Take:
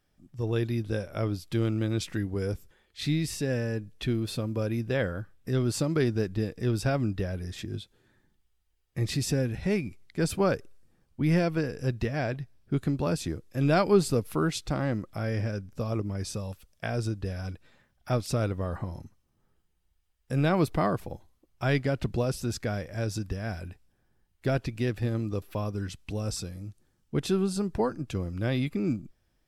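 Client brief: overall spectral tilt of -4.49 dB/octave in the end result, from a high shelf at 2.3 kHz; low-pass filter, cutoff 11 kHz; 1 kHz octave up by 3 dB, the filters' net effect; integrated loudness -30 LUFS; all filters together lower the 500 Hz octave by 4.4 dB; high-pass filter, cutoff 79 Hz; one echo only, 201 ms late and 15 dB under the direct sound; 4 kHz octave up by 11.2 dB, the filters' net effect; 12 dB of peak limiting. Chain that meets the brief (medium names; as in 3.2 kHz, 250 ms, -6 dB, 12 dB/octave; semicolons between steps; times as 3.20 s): high-pass 79 Hz; low-pass 11 kHz; peaking EQ 500 Hz -7.5 dB; peaking EQ 1 kHz +5 dB; treble shelf 2.3 kHz +5.5 dB; peaking EQ 4 kHz +8.5 dB; peak limiter -20 dBFS; delay 201 ms -15 dB; trim +1.5 dB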